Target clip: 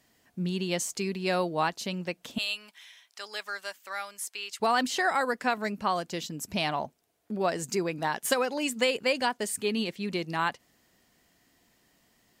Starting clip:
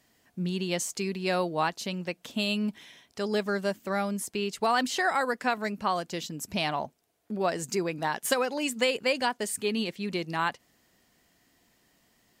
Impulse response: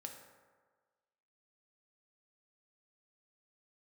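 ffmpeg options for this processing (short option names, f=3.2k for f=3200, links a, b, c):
-filter_complex "[0:a]asettb=1/sr,asplit=3[a][b][c];[a]atrim=end=2.384[d];[b]atrim=start=2.38:end=4.6,asetpts=PTS-STARTPTS,afade=t=in:d=0.004:c=qsin,afade=t=out:st=2.216:d=0.004:c=qsin,highpass=1.2k[e];[c]atrim=start=4.596[f];[d][e]acrossfade=d=0.004:c1=hsin:c2=qsin[g];[g][f]acrossfade=d=0.004:c1=qsin:c2=hsin"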